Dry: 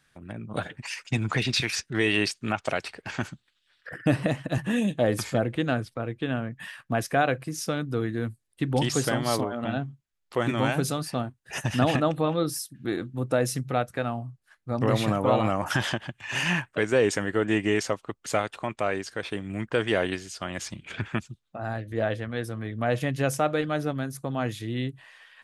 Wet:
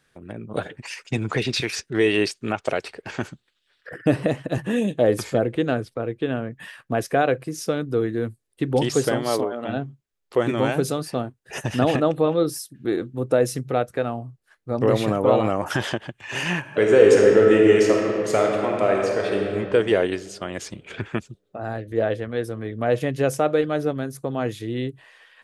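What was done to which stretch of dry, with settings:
0:09.18–0:09.68: high-pass filter 150 Hz → 380 Hz 6 dB per octave
0:16.59–0:19.49: thrown reverb, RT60 2.5 s, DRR −1 dB
whole clip: parametric band 430 Hz +9 dB 0.94 octaves

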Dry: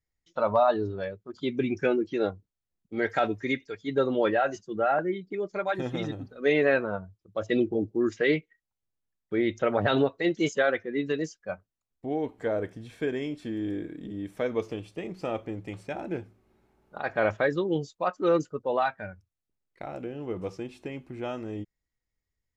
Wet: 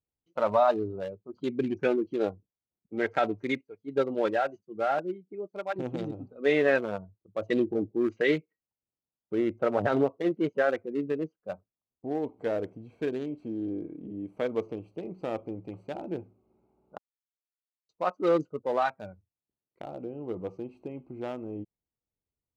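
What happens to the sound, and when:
0:03.61–0:05.76: expander for the loud parts, over −46 dBFS
0:09.35–0:12.11: low-pass filter 1,700 Hz
0:16.98–0:17.89: silence
whole clip: adaptive Wiener filter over 25 samples; high-pass filter 150 Hz 6 dB per octave

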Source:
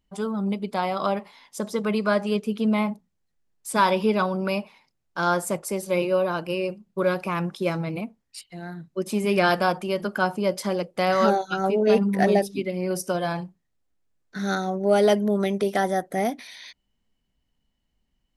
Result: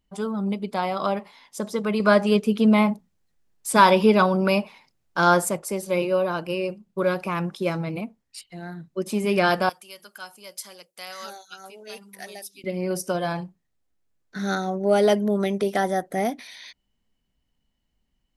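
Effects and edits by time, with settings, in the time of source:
0:02.00–0:05.49: clip gain +5 dB
0:09.69–0:12.64: first-order pre-emphasis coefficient 0.97

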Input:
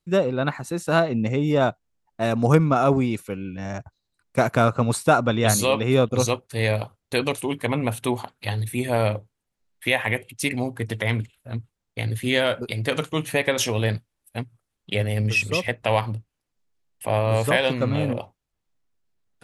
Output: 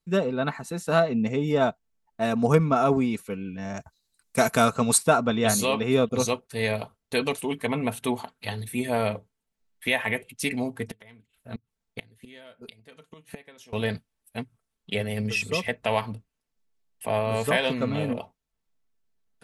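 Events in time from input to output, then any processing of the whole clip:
0:03.77–0:04.98: parametric band 11,000 Hz +14 dB 2.4 octaves
0:10.85–0:13.73: gate with flip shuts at −19 dBFS, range −24 dB
whole clip: comb filter 4.5 ms, depth 48%; level −3.5 dB

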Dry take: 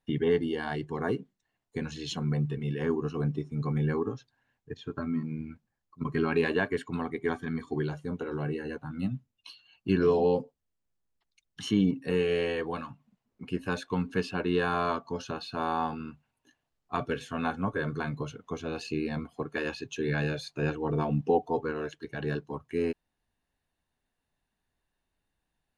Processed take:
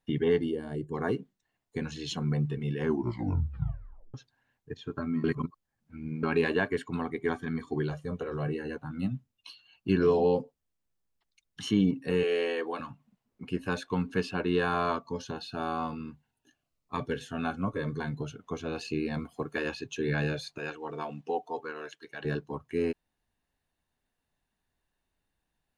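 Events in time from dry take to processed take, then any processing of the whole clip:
0:00.51–0:00.94: gain on a spectral selection 660–6,900 Hz −14 dB
0:02.83: tape stop 1.31 s
0:05.24–0:06.23: reverse
0:07.90–0:08.48: comb filter 1.7 ms, depth 49%
0:12.23–0:12.80: high-pass filter 260 Hz 24 dB per octave
0:14.99–0:18.41: phaser whose notches keep moving one way falling 1.1 Hz
0:19.14–0:19.57: high-shelf EQ 7,100 Hz +9.5 dB
0:20.58–0:22.25: high-pass filter 960 Hz 6 dB per octave

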